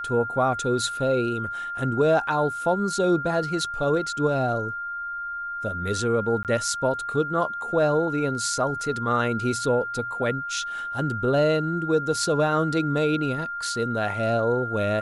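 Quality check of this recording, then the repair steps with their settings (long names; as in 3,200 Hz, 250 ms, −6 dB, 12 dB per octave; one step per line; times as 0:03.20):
whistle 1,400 Hz −29 dBFS
0:06.43–0:06.45: drop-out 18 ms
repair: notch filter 1,400 Hz, Q 30
repair the gap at 0:06.43, 18 ms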